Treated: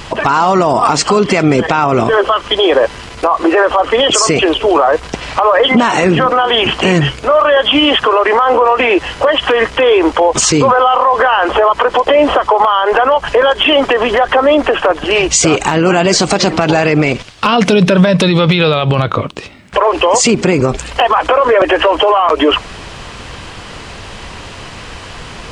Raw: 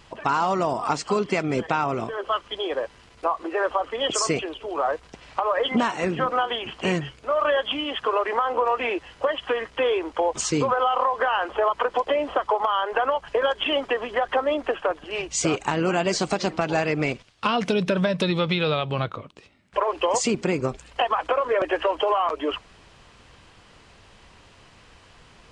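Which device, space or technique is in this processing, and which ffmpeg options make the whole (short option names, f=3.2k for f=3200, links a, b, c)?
loud club master: -af "acompressor=threshold=-24dB:ratio=2.5,asoftclip=type=hard:threshold=-15.5dB,alimiter=level_in=23.5dB:limit=-1dB:release=50:level=0:latency=1,volume=-1dB"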